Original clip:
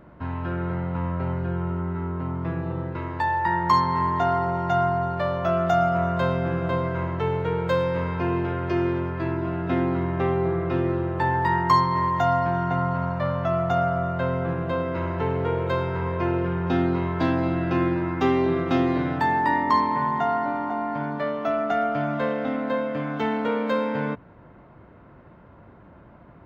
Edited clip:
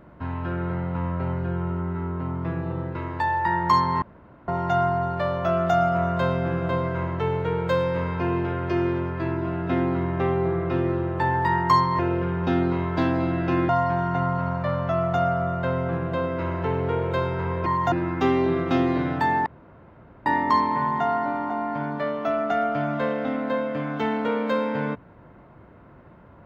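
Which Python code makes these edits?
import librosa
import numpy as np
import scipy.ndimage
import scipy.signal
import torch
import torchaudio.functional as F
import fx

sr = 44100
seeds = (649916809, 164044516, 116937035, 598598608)

y = fx.edit(x, sr, fx.room_tone_fill(start_s=4.02, length_s=0.46),
    fx.swap(start_s=11.99, length_s=0.26, other_s=16.22, other_length_s=1.7),
    fx.insert_room_tone(at_s=19.46, length_s=0.8), tone=tone)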